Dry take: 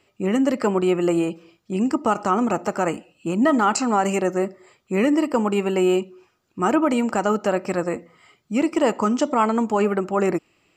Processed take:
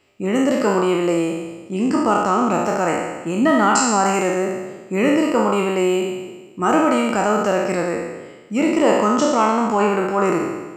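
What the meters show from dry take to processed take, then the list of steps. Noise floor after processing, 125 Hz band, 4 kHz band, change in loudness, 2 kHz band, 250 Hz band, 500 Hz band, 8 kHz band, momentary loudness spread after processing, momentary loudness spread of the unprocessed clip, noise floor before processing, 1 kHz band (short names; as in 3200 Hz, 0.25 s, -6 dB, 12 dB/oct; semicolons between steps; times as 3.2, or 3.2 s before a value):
-41 dBFS, +2.0 dB, +5.5 dB, +3.0 dB, +5.5 dB, +2.0 dB, +3.5 dB, +7.0 dB, 10 LU, 8 LU, -67 dBFS, +4.5 dB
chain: spectral trails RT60 1.26 s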